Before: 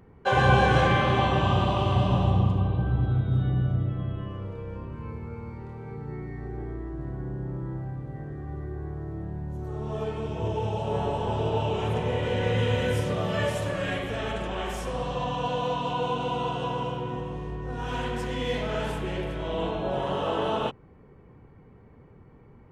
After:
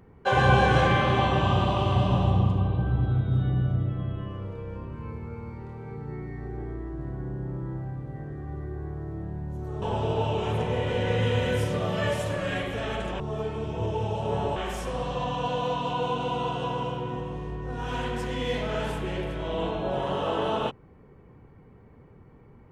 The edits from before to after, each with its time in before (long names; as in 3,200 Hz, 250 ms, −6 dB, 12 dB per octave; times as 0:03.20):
0:09.82–0:11.18: move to 0:14.56